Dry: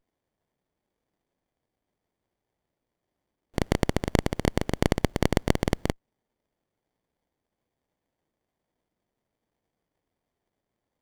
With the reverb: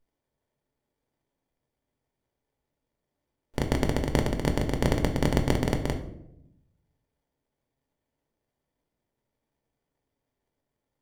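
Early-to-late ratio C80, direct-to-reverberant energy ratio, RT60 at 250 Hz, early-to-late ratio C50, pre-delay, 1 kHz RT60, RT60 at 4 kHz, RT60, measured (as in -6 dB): 13.0 dB, 4.0 dB, 1.2 s, 10.0 dB, 3 ms, 0.65 s, 0.50 s, 0.80 s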